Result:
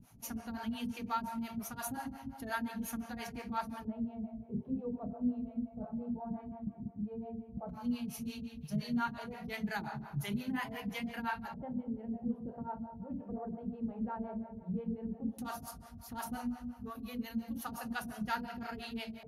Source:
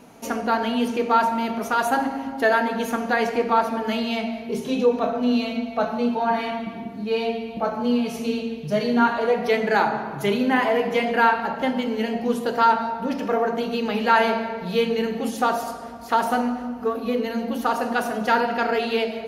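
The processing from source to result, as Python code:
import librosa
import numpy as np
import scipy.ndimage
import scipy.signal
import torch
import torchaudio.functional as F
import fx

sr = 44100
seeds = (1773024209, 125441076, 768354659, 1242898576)

y = fx.curve_eq(x, sr, hz=(120.0, 470.0, 810.0, 7500.0, 12000.0), db=(0, -28, -20, -17, 8))
y = fx.filter_lfo_lowpass(y, sr, shape='square', hz=0.13, low_hz=550.0, high_hz=6700.0, q=1.7)
y = fx.harmonic_tremolo(y, sr, hz=5.7, depth_pct=100, crossover_hz=440.0)
y = y * 10.0 ** (5.0 / 20.0)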